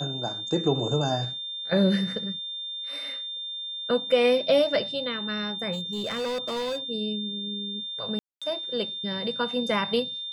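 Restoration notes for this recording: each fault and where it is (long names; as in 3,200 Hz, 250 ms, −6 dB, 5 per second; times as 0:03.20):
whistle 3,600 Hz −32 dBFS
0:05.72–0:06.78: clipping −26.5 dBFS
0:08.19–0:08.42: drop-out 226 ms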